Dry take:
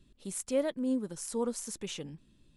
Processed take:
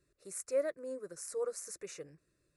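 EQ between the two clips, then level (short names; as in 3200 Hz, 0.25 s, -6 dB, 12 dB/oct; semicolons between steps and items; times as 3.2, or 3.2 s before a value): HPF 300 Hz 6 dB/oct; high shelf 9500 Hz -6 dB; fixed phaser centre 870 Hz, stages 6; 0.0 dB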